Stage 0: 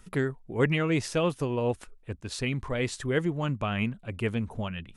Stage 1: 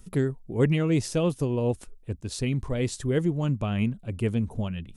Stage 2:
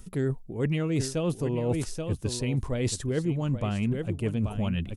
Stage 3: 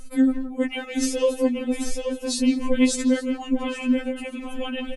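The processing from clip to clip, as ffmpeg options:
ffmpeg -i in.wav -af "equalizer=frequency=1600:width_type=o:width=2.7:gain=-11.5,volume=5dB" out.wav
ffmpeg -i in.wav -af "aecho=1:1:831:0.237,areverse,acompressor=threshold=-31dB:ratio=6,areverse,volume=6.5dB" out.wav
ffmpeg -i in.wav -filter_complex "[0:a]asplit=2[link_01][link_02];[link_02]adelay=170,highpass=300,lowpass=3400,asoftclip=type=hard:threshold=-25dB,volume=-8dB[link_03];[link_01][link_03]amix=inputs=2:normalize=0,afftfilt=real='re*3.46*eq(mod(b,12),0)':imag='im*3.46*eq(mod(b,12),0)':win_size=2048:overlap=0.75,volume=8.5dB" out.wav

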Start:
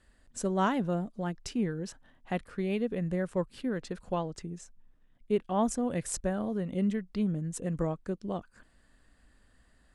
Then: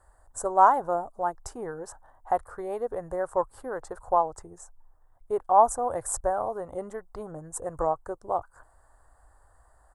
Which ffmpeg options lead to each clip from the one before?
ffmpeg -i in.wav -af "firequalizer=gain_entry='entry(100,0);entry(190,-23);entry(340,-6);entry(810,12);entry(1300,4);entry(2500,-23);entry(8000,2)':delay=0.05:min_phase=1,volume=4dB" out.wav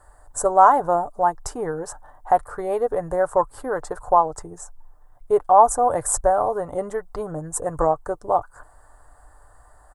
ffmpeg -i in.wav -filter_complex "[0:a]aecho=1:1:6.8:0.32,asplit=2[link_01][link_02];[link_02]alimiter=limit=-17dB:level=0:latency=1:release=192,volume=-0.5dB[link_03];[link_01][link_03]amix=inputs=2:normalize=0,volume=2.5dB" out.wav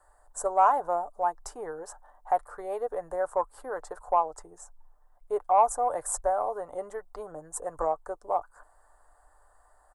ffmpeg -i in.wav -filter_complex "[0:a]acrossover=split=430|920[link_01][link_02][link_03];[link_02]acontrast=23[link_04];[link_01][link_04][link_03]amix=inputs=3:normalize=0,equalizer=frequency=120:width_type=o:width=2.7:gain=-13,volume=-9dB" out.wav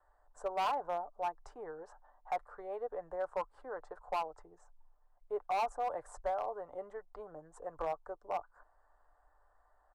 ffmpeg -i in.wav -filter_complex "[0:a]lowpass=3200,acrossover=split=330[link_01][link_02];[link_02]asoftclip=type=hard:threshold=-21.5dB[link_03];[link_01][link_03]amix=inputs=2:normalize=0,volume=-8dB" out.wav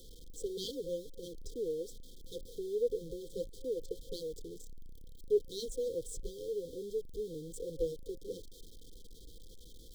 ffmpeg -i in.wav -af "aeval=exprs='val(0)+0.5*0.00237*sgn(val(0))':channel_layout=same,afftfilt=real='re*(1-between(b*sr/4096,530,3100))':imag='im*(1-between(b*sr/4096,530,3100))':win_size=4096:overlap=0.75,volume=8.5dB" out.wav

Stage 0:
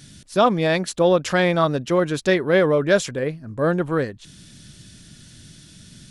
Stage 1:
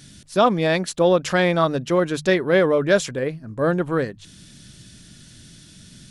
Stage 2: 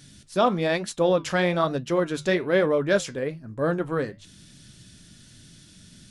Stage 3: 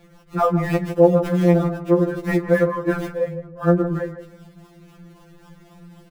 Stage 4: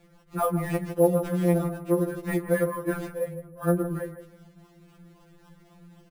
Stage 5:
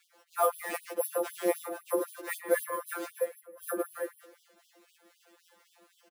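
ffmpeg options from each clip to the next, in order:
ffmpeg -i in.wav -af "bandreject=frequency=50:width_type=h:width=6,bandreject=frequency=100:width_type=h:width=6,bandreject=frequency=150:width_type=h:width=6" out.wav
ffmpeg -i in.wav -af "flanger=delay=6.5:depth=6:regen=-71:speed=1.1:shape=triangular" out.wav
ffmpeg -i in.wav -filter_complex "[0:a]acrossover=split=2000[link_01][link_02];[link_02]acrusher=samples=39:mix=1:aa=0.000001:lfo=1:lforange=39:lforate=3.8[link_03];[link_01][link_03]amix=inputs=2:normalize=0,asplit=2[link_04][link_05];[link_05]adelay=157,lowpass=frequency=1600:poles=1,volume=-10.5dB,asplit=2[link_06][link_07];[link_07]adelay=157,lowpass=frequency=1600:poles=1,volume=0.25,asplit=2[link_08][link_09];[link_09]adelay=157,lowpass=frequency=1600:poles=1,volume=0.25[link_10];[link_04][link_06][link_08][link_10]amix=inputs=4:normalize=0,afftfilt=real='re*2.83*eq(mod(b,8),0)':imag='im*2.83*eq(mod(b,8),0)':win_size=2048:overlap=0.75,volume=5dB" out.wav
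ffmpeg -i in.wav -af "acrusher=samples=4:mix=1:aa=0.000001,volume=-7dB" out.wav
ffmpeg -i in.wav -filter_complex "[0:a]bass=frequency=250:gain=-9,treble=frequency=4000:gain=3,asplit=2[link_01][link_02];[link_02]adelay=110,highpass=300,lowpass=3400,asoftclip=type=hard:threshold=-18.5dB,volume=-14dB[link_03];[link_01][link_03]amix=inputs=2:normalize=0,afftfilt=real='re*gte(b*sr/1024,210*pow(3000/210,0.5+0.5*sin(2*PI*3.9*pts/sr)))':imag='im*gte(b*sr/1024,210*pow(3000/210,0.5+0.5*sin(2*PI*3.9*pts/sr)))':win_size=1024:overlap=0.75" out.wav

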